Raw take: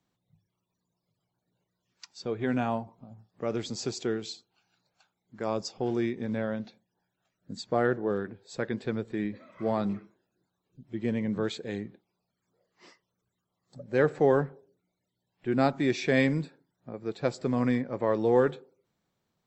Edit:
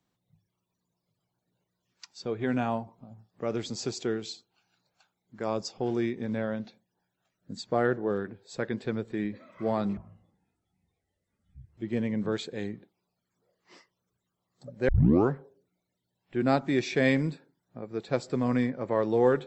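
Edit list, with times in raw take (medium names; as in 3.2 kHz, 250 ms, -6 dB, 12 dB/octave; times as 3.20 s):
9.97–10.89 s: speed 51%
14.00 s: tape start 0.42 s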